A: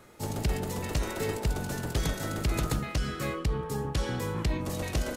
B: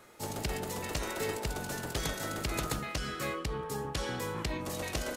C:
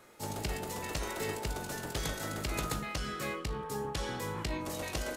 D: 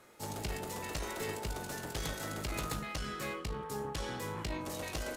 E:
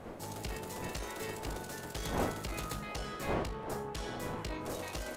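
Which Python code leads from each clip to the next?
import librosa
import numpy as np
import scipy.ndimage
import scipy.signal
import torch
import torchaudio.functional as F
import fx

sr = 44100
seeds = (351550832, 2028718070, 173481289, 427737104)

y1 = fx.low_shelf(x, sr, hz=280.0, db=-9.5)
y2 = fx.comb_fb(y1, sr, f0_hz=52.0, decay_s=0.25, harmonics='all', damping=0.0, mix_pct=60)
y2 = y2 * 10.0 ** (2.0 / 20.0)
y3 = fx.tube_stage(y2, sr, drive_db=28.0, bias=0.45)
y4 = fx.dmg_wind(y3, sr, seeds[0], corner_hz=640.0, level_db=-41.0)
y4 = fx.echo_stepped(y4, sr, ms=765, hz=560.0, octaves=0.7, feedback_pct=70, wet_db=-9.5)
y4 = y4 * 10.0 ** (-2.0 / 20.0)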